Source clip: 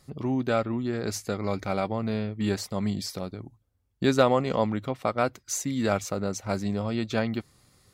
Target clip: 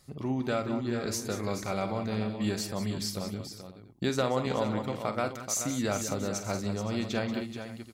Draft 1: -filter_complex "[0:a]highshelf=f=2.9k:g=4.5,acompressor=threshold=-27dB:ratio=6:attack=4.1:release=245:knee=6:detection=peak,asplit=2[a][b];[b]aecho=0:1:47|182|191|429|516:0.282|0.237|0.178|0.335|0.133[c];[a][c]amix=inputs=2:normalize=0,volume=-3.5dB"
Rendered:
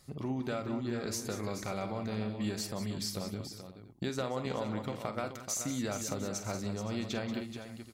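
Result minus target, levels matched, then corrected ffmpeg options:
compressor: peak gain reduction +7.5 dB
-filter_complex "[0:a]highshelf=f=2.9k:g=4.5,acompressor=threshold=-18dB:ratio=6:attack=4.1:release=245:knee=6:detection=peak,asplit=2[a][b];[b]aecho=0:1:47|182|191|429|516:0.282|0.237|0.178|0.335|0.133[c];[a][c]amix=inputs=2:normalize=0,volume=-3.5dB"

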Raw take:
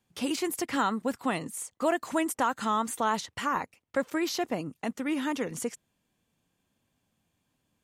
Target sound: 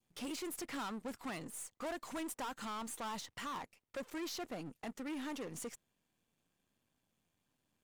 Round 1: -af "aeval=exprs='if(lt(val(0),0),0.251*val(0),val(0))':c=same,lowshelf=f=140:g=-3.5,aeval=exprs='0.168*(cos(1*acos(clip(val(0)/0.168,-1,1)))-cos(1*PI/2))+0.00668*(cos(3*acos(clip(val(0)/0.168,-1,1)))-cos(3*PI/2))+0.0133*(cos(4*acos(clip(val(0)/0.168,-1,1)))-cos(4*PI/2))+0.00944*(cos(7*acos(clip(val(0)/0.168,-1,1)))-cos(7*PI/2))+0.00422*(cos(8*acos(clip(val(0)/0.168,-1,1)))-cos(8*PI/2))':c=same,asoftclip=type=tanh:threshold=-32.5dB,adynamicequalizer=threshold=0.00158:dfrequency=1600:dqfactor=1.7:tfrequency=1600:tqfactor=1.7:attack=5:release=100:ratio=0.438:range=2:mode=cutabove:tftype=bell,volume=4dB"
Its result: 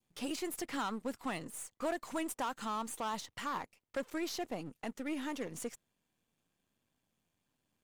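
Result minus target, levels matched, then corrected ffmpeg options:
soft clip: distortion -4 dB
-af "aeval=exprs='if(lt(val(0),0),0.251*val(0),val(0))':c=same,lowshelf=f=140:g=-3.5,aeval=exprs='0.168*(cos(1*acos(clip(val(0)/0.168,-1,1)))-cos(1*PI/2))+0.00668*(cos(3*acos(clip(val(0)/0.168,-1,1)))-cos(3*PI/2))+0.0133*(cos(4*acos(clip(val(0)/0.168,-1,1)))-cos(4*PI/2))+0.00944*(cos(7*acos(clip(val(0)/0.168,-1,1)))-cos(7*PI/2))+0.00422*(cos(8*acos(clip(val(0)/0.168,-1,1)))-cos(8*PI/2))':c=same,asoftclip=type=tanh:threshold=-41.5dB,adynamicequalizer=threshold=0.00158:dfrequency=1600:dqfactor=1.7:tfrequency=1600:tqfactor=1.7:attack=5:release=100:ratio=0.438:range=2:mode=cutabove:tftype=bell,volume=4dB"

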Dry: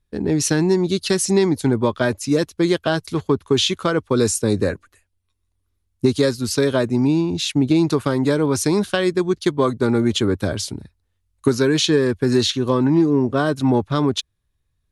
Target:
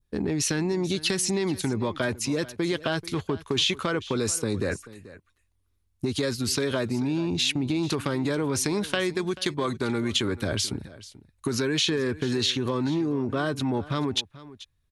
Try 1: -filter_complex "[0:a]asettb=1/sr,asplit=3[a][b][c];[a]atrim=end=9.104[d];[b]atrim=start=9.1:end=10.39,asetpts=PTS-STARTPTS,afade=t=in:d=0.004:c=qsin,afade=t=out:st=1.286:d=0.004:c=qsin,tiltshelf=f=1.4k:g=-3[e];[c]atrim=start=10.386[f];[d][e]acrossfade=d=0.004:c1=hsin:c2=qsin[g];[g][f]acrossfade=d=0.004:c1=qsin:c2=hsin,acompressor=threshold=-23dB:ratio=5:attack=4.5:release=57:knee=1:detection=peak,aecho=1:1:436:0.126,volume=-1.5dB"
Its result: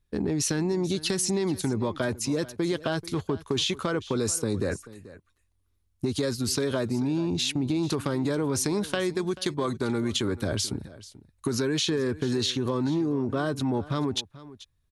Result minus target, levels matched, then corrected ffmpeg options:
2000 Hz band -3.0 dB
-filter_complex "[0:a]asettb=1/sr,asplit=3[a][b][c];[a]atrim=end=9.104[d];[b]atrim=start=9.1:end=10.39,asetpts=PTS-STARTPTS,afade=t=in:d=0.004:c=qsin,afade=t=out:st=1.286:d=0.004:c=qsin,tiltshelf=f=1.4k:g=-3[e];[c]atrim=start=10.386[f];[d][e]acrossfade=d=0.004:c1=hsin:c2=qsin[g];[g][f]acrossfade=d=0.004:c1=qsin:c2=hsin,acompressor=threshold=-23dB:ratio=5:attack=4.5:release=57:knee=1:detection=peak,adynamicequalizer=threshold=0.00562:dfrequency=2400:dqfactor=0.98:tfrequency=2400:tqfactor=0.98:attack=5:release=100:ratio=0.438:range=3:mode=boostabove:tftype=bell,aecho=1:1:436:0.126,volume=-1.5dB"

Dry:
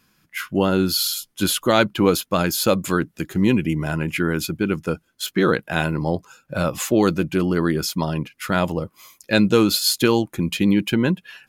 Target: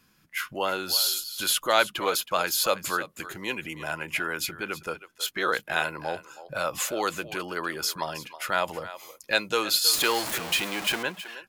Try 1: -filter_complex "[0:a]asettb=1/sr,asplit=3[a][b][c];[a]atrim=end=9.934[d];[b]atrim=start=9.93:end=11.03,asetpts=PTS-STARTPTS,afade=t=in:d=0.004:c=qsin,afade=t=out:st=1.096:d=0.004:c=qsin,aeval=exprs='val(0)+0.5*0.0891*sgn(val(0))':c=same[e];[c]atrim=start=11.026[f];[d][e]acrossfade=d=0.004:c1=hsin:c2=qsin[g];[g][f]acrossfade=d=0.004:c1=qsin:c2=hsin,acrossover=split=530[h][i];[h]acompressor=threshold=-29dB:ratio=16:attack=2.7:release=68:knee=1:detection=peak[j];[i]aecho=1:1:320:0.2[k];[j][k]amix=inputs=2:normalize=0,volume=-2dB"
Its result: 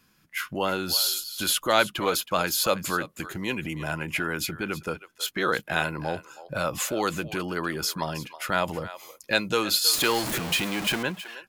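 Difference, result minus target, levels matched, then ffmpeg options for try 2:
compressor: peak gain reduction -10.5 dB
-filter_complex "[0:a]asettb=1/sr,asplit=3[a][b][c];[a]atrim=end=9.934[d];[b]atrim=start=9.93:end=11.03,asetpts=PTS-STARTPTS,afade=t=in:d=0.004:c=qsin,afade=t=out:st=1.096:d=0.004:c=qsin,aeval=exprs='val(0)+0.5*0.0891*sgn(val(0))':c=same[e];[c]atrim=start=11.026[f];[d][e]acrossfade=d=0.004:c1=hsin:c2=qsin[g];[g][f]acrossfade=d=0.004:c1=qsin:c2=hsin,acrossover=split=530[h][i];[h]acompressor=threshold=-40dB:ratio=16:attack=2.7:release=68:knee=1:detection=peak[j];[i]aecho=1:1:320:0.2[k];[j][k]amix=inputs=2:normalize=0,volume=-2dB"

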